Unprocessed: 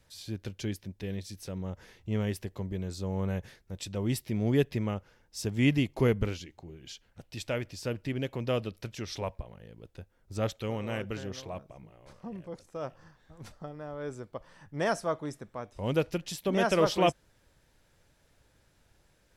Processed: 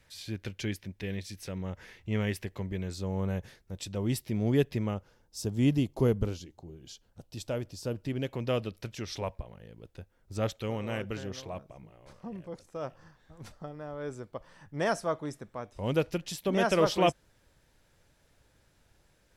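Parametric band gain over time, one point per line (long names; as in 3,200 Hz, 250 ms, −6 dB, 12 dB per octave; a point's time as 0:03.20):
parametric band 2,100 Hz 1.1 octaves
0:02.82 +7 dB
0:03.22 −1.5 dB
0:04.85 −1.5 dB
0:05.39 −11.5 dB
0:07.88 −11.5 dB
0:08.30 0 dB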